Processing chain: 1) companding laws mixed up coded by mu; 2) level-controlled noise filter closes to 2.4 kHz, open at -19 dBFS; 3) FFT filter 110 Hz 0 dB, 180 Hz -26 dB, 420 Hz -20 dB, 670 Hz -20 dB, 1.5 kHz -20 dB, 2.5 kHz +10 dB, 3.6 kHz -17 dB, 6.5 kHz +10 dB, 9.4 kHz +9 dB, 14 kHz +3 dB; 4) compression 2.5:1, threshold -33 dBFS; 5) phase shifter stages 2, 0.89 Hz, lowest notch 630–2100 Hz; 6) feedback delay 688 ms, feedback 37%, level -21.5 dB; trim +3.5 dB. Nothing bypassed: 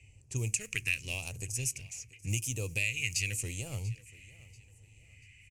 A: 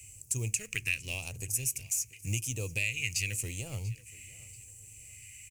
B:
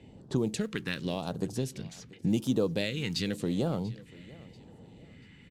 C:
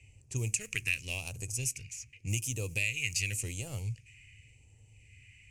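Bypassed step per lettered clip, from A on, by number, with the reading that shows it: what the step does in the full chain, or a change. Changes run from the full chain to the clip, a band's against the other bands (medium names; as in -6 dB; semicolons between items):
2, 8 kHz band +3.0 dB; 3, crest factor change -5.5 dB; 6, momentary loudness spread change -3 LU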